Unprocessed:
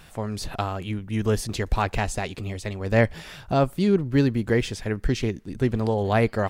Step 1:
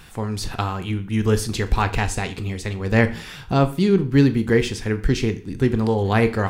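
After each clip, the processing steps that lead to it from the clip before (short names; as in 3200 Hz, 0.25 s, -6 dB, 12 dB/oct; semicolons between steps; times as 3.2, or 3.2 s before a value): bell 620 Hz -10 dB 0.34 oct; on a send at -10 dB: reverb RT60 0.40 s, pre-delay 22 ms; on the sum: gain +4 dB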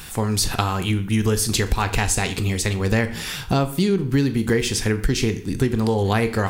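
high shelf 5000 Hz +11.5 dB; compressor 6:1, threshold -21 dBFS, peak gain reduction 11 dB; gain +5 dB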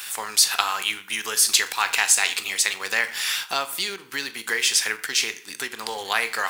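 HPF 1300 Hz 12 dB/oct; in parallel at -10.5 dB: bit-crush 6-bit; on the sum: gain +3 dB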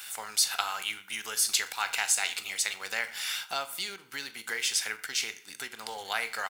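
comb 1.4 ms, depth 32%; gain -8.5 dB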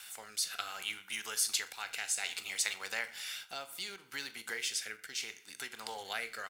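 rotary speaker horn 0.65 Hz; gain -3 dB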